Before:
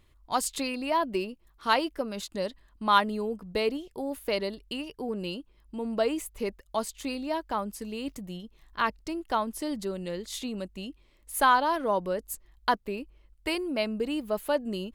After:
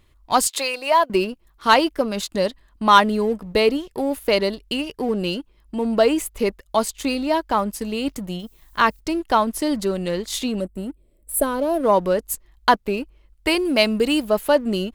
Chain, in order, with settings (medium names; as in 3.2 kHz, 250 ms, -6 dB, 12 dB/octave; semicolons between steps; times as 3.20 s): 0.47–1.10 s: high-pass 430 Hz 24 dB/octave; 10.61–11.84 s: time-frequency box 700–7400 Hz -18 dB; 13.65–14.25 s: treble shelf 2.4 kHz +8 dB; waveshaping leveller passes 1; 8.38–8.99 s: added noise violet -65 dBFS; trim +6.5 dB